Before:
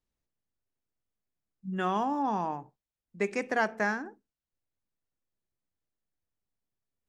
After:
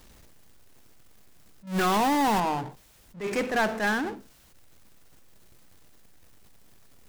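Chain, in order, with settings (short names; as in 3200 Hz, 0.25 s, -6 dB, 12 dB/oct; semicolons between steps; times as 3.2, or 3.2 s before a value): 1.67–2.4 zero-crossing step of -34 dBFS; power-law curve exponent 0.5; attack slew limiter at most 180 dB/s; gain -1.5 dB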